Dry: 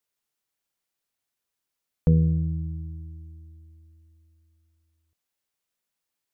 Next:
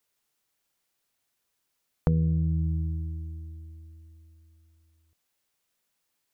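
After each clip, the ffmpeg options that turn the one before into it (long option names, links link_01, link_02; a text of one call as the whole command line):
ffmpeg -i in.wav -af "acompressor=threshold=-29dB:ratio=4,volume=6dB" out.wav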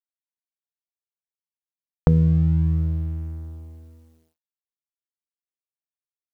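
ffmpeg -i in.wav -af "aeval=exprs='sgn(val(0))*max(abs(val(0))-0.00266,0)':channel_layout=same,volume=7.5dB" out.wav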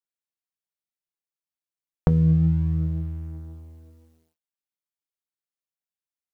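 ffmpeg -i in.wav -af "flanger=delay=5.2:depth=1.4:regen=71:speed=1.9:shape=triangular,volume=2dB" out.wav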